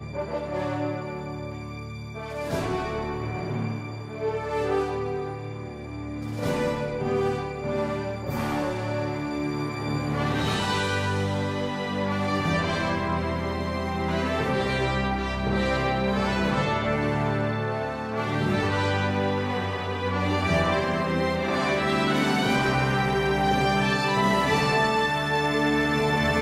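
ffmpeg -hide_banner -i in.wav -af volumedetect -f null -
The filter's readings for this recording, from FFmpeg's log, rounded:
mean_volume: -25.8 dB
max_volume: -10.5 dB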